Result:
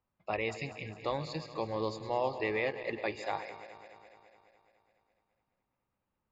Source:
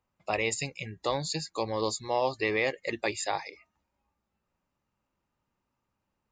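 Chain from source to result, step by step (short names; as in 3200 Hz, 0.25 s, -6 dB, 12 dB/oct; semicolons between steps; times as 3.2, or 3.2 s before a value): regenerating reverse delay 0.105 s, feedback 79%, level -13 dB; air absorption 210 m; gain -3.5 dB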